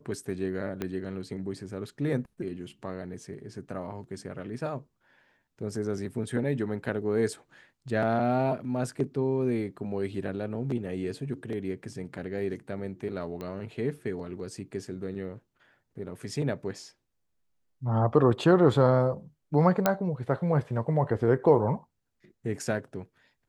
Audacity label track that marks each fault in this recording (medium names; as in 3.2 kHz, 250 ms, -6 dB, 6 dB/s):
0.820000	0.820000	pop -18 dBFS
13.410000	13.410000	pop -25 dBFS
19.860000	19.860000	pop -8 dBFS